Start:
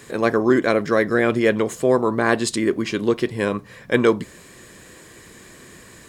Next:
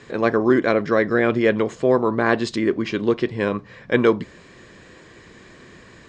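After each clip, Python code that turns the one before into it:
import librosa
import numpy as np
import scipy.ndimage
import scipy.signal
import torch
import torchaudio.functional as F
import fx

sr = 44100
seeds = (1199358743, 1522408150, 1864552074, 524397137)

y = scipy.signal.sosfilt(scipy.signal.bessel(6, 4200.0, 'lowpass', norm='mag', fs=sr, output='sos'), x)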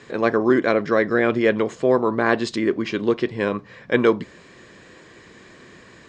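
y = fx.low_shelf(x, sr, hz=88.0, db=-8.5)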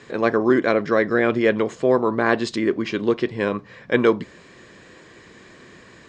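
y = x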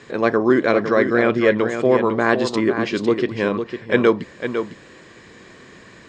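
y = x + 10.0 ** (-8.0 / 20.0) * np.pad(x, (int(504 * sr / 1000.0), 0))[:len(x)]
y = y * 10.0 ** (1.5 / 20.0)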